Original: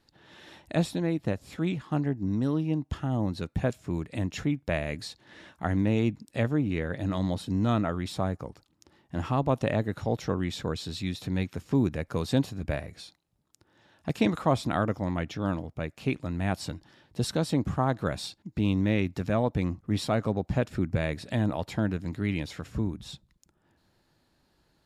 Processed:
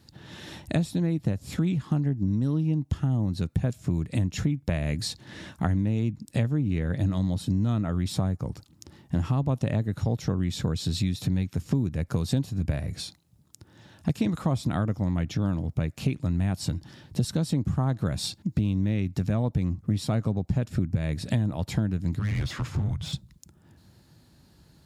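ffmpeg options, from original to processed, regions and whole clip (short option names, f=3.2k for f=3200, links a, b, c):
-filter_complex "[0:a]asettb=1/sr,asplit=3[a][b][c];[a]atrim=end=22.194[d];[b]atrim=start=22.19:end=23.13,asetpts=PTS-STARTPTS,afade=t=in:d=0.004:c=qsin,afade=t=out:st=0.936:d=0.004:c=qsin,afreqshift=-210,asoftclip=type=hard:threshold=-30.5dB,asplit=2[e][f];[f]highpass=f=720:p=1,volume=14dB,asoftclip=type=tanh:threshold=-30.5dB[g];[e][g]amix=inputs=2:normalize=0,lowpass=f=1.7k:p=1,volume=-6dB[h];[c]atrim=start=23.126[i];[d][h]acrossfade=d=0.004:c1=hsin:c2=qsin[j];[j][i]acrossfade=d=0.004:c1=qsin:c2=hsin,highpass=69,bass=f=250:g=13,treble=f=4k:g=7,acompressor=threshold=-28dB:ratio=6,volume=5dB"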